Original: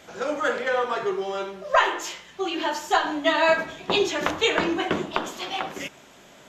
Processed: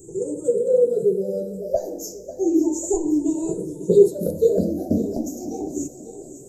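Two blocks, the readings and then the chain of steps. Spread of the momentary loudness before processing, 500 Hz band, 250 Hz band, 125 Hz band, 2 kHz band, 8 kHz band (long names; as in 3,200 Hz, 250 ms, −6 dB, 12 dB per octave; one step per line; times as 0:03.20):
10 LU, +6.5 dB, +8.5 dB, +9.5 dB, below −40 dB, +5.0 dB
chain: rippled gain that drifts along the octave scale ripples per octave 0.68, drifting +0.32 Hz, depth 21 dB
elliptic band-stop filter 440–7,700 Hz, stop band 50 dB
on a send: feedback echo with a high-pass in the loop 545 ms, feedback 60%, high-pass 220 Hz, level −14 dB
on the sum: level +6 dB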